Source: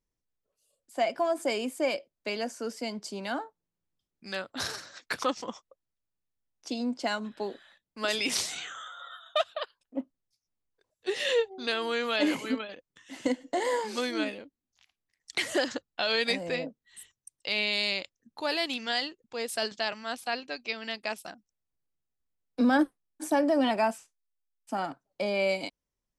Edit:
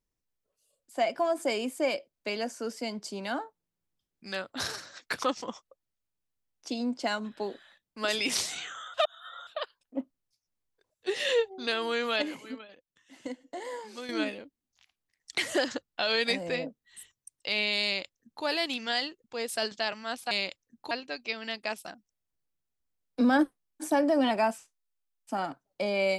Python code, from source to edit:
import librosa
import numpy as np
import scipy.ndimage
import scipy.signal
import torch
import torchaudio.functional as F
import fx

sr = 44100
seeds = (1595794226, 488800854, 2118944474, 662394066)

y = fx.edit(x, sr, fx.reverse_span(start_s=8.94, length_s=0.53),
    fx.clip_gain(start_s=12.22, length_s=1.87, db=-10.0),
    fx.duplicate(start_s=17.84, length_s=0.6, to_s=20.31), tone=tone)